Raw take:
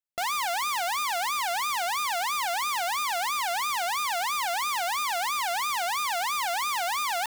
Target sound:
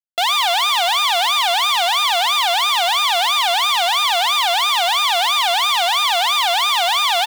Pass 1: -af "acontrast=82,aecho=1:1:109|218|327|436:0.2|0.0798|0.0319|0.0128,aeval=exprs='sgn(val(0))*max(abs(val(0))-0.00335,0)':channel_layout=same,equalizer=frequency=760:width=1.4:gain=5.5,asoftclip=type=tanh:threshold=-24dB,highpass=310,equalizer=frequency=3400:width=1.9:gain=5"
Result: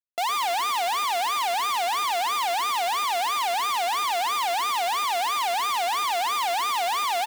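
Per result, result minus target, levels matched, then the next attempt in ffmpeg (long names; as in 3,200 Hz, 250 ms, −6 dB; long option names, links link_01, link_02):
soft clipping: distortion +13 dB; 4,000 Hz band −5.0 dB
-af "acontrast=82,aecho=1:1:109|218|327|436:0.2|0.0798|0.0319|0.0128,aeval=exprs='sgn(val(0))*max(abs(val(0))-0.00335,0)':channel_layout=same,equalizer=frequency=760:width=1.4:gain=5.5,asoftclip=type=tanh:threshold=-13dB,highpass=310,equalizer=frequency=3400:width=1.9:gain=5"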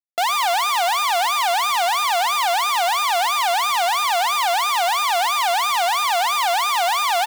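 4,000 Hz band −4.5 dB
-af "acontrast=82,aecho=1:1:109|218|327|436:0.2|0.0798|0.0319|0.0128,aeval=exprs='sgn(val(0))*max(abs(val(0))-0.00335,0)':channel_layout=same,equalizer=frequency=760:width=1.4:gain=5.5,asoftclip=type=tanh:threshold=-13dB,highpass=310,equalizer=frequency=3400:width=1.9:gain=15"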